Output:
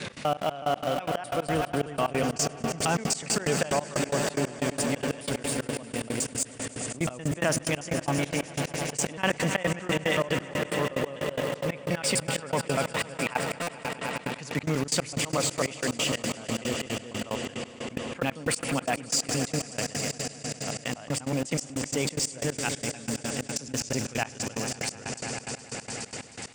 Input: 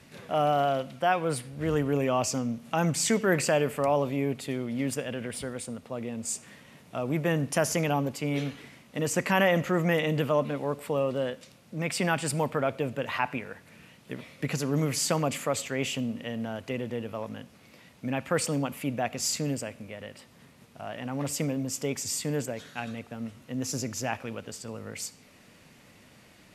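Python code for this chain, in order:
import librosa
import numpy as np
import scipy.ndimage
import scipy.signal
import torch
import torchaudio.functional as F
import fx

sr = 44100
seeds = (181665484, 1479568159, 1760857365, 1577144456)

p1 = fx.block_reorder(x, sr, ms=124.0, group=2)
p2 = fx.peak_eq(p1, sr, hz=7200.0, db=-3.5, octaves=1.1)
p3 = fx.echo_swell(p2, sr, ms=104, loudest=5, wet_db=-14)
p4 = fx.step_gate(p3, sr, bpm=182, pattern='x.xx.x..', floor_db=-24.0, edge_ms=4.5)
p5 = scipy.signal.sosfilt(scipy.signal.butter(16, 9900.0, 'lowpass', fs=sr, output='sos'), p4)
p6 = np.where(np.abs(p5) >= 10.0 ** (-30.0 / 20.0), p5, 0.0)
p7 = p5 + (p6 * 10.0 ** (-10.5 / 20.0))
p8 = fx.high_shelf(p7, sr, hz=2300.0, db=8.5)
p9 = fx.buffer_glitch(p8, sr, at_s=(13.62,), block=256, repeats=8)
p10 = fx.env_flatten(p9, sr, amount_pct=50)
y = p10 * 10.0 ** (-4.5 / 20.0)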